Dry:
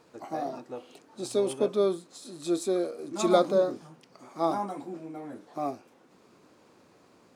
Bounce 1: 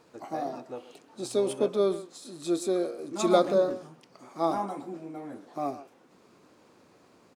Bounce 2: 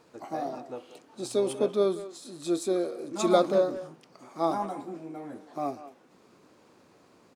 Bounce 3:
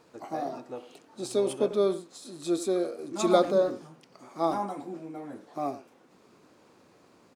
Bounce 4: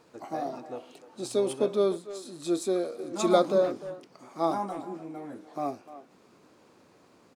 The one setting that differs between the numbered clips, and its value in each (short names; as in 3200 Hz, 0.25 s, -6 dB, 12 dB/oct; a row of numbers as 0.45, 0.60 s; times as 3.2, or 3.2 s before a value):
speakerphone echo, time: 130, 190, 90, 300 ms